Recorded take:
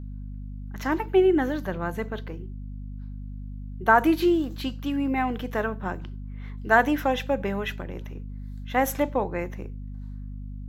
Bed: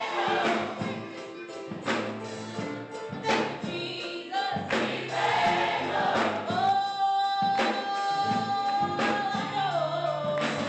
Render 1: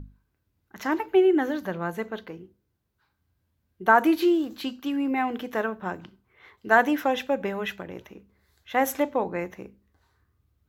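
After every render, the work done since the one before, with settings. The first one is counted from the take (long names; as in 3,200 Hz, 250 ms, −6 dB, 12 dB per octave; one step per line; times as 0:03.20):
mains-hum notches 50/100/150/200/250 Hz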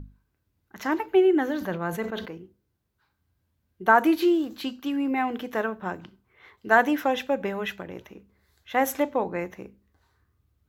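0:01.48–0:02.38: level that may fall only so fast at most 78 dB per second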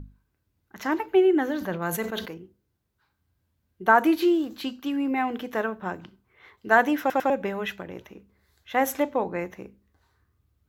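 0:01.82–0:02.34: parametric band 12,000 Hz +12 dB 2.2 octaves
0:07.00: stutter in place 0.10 s, 3 plays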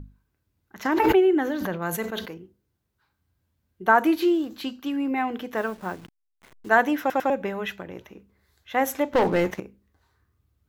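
0:00.85–0:01.71: background raised ahead of every attack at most 27 dB per second
0:05.57–0:06.69: hold until the input has moved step −44.5 dBFS
0:09.13–0:09.60: leveller curve on the samples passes 3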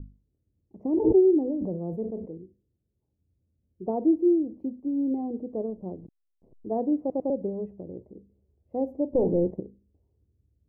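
inverse Chebyshev low-pass filter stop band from 1,400 Hz, stop band 50 dB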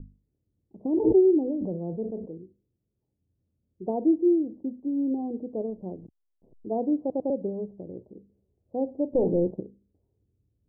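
low-pass filter 1,000 Hz 24 dB per octave
parametric band 65 Hz −15 dB 0.39 octaves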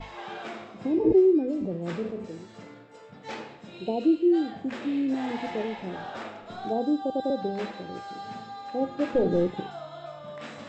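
mix in bed −12 dB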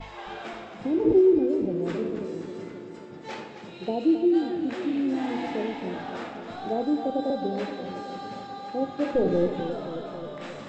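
flutter between parallel walls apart 10.5 metres, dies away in 0.26 s
feedback echo with a swinging delay time 267 ms, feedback 68%, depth 73 cents, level −10 dB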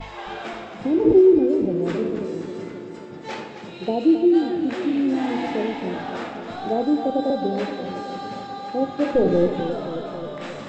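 level +5 dB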